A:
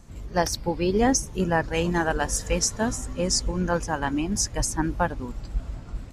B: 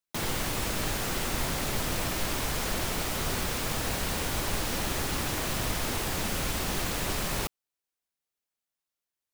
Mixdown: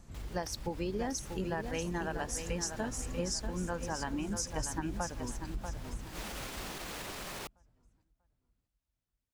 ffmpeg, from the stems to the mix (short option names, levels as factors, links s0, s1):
-filter_complex "[0:a]acompressor=threshold=0.0447:ratio=6,volume=0.531,asplit=3[s0][s1][s2];[s1]volume=0.422[s3];[1:a]highshelf=f=8300:g=-6,alimiter=level_in=1.19:limit=0.0631:level=0:latency=1:release=56,volume=0.841,lowshelf=f=150:g=-11,volume=0.562[s4];[s2]apad=whole_len=411704[s5];[s4][s5]sidechaincompress=threshold=0.00224:ratio=8:attack=8.8:release=119[s6];[s3]aecho=0:1:640|1280|1920|2560|3200:1|0.33|0.109|0.0359|0.0119[s7];[s0][s6][s7]amix=inputs=3:normalize=0"